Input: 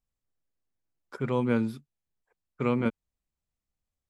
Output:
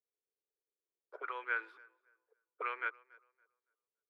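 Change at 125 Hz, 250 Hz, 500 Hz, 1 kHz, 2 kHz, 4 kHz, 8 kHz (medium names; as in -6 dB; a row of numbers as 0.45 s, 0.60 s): under -40 dB, -35.0 dB, -18.5 dB, -3.5 dB, +3.0 dB, -9.0 dB, no reading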